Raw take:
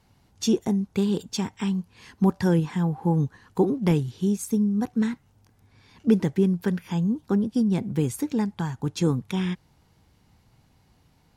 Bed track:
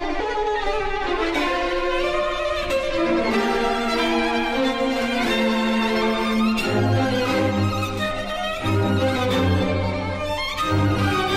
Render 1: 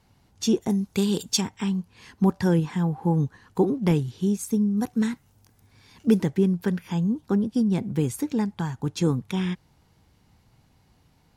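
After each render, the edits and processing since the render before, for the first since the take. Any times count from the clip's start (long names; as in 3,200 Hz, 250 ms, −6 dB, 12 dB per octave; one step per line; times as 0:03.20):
0:00.69–0:01.40: high-shelf EQ 4,000 Hz → 2,700 Hz +11.5 dB
0:04.77–0:06.23: high-shelf EQ 5,800 Hz +10 dB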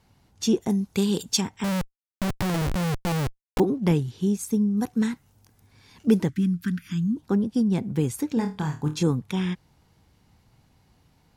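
0:01.64–0:03.60: comparator with hysteresis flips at −32 dBFS
0:06.29–0:07.17: Chebyshev band-stop filter 290–1,300 Hz, order 3
0:08.34–0:09.03: flutter between parallel walls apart 4.5 metres, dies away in 0.27 s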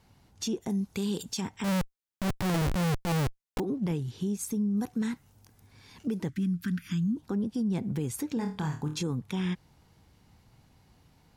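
downward compressor 6 to 1, threshold −25 dBFS, peak gain reduction 11.5 dB
brickwall limiter −23 dBFS, peak gain reduction 8.5 dB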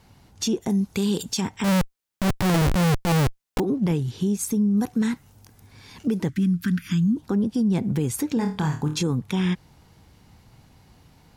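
level +7.5 dB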